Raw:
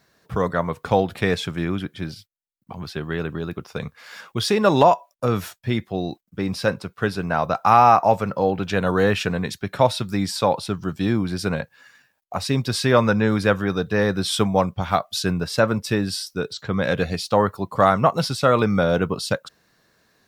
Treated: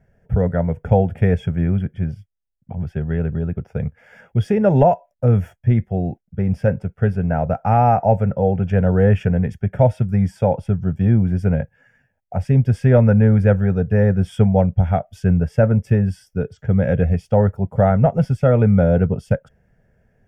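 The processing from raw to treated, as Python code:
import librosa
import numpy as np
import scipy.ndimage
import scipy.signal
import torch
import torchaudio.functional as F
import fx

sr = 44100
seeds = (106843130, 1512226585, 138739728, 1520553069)

y = fx.tilt_eq(x, sr, slope=-4.5)
y = fx.fixed_phaser(y, sr, hz=1100.0, stages=6)
y = fx.small_body(y, sr, hz=(270.0, 3300.0), ring_ms=45, db=11)
y = F.gain(torch.from_numpy(y), -1.5).numpy()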